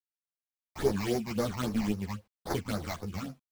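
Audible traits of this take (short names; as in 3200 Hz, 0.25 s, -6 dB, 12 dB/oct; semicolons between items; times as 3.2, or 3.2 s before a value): aliases and images of a low sample rate 2700 Hz, jitter 20%; phasing stages 8, 3.7 Hz, lowest notch 410–3100 Hz; a quantiser's noise floor 12-bit, dither none; a shimmering, thickened sound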